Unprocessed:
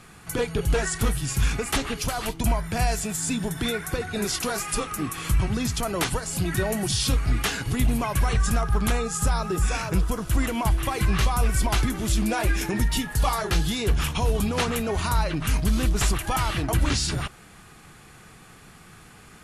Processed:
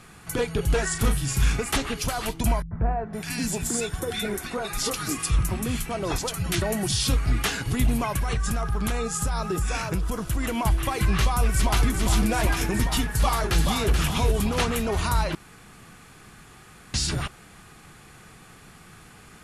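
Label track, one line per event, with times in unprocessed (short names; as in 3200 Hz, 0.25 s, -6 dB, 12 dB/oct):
0.860000	1.610000	doubler 36 ms -8 dB
2.620000	6.620000	three bands offset in time lows, mids, highs 90/510 ms, splits 180/1400 Hz
8.130000	10.480000	compressor, threshold -21 dBFS
11.190000	11.860000	echo throw 0.4 s, feedback 85%, level -6 dB
13.130000	13.880000	echo throw 0.43 s, feedback 10%, level -6 dB
15.350000	16.940000	room tone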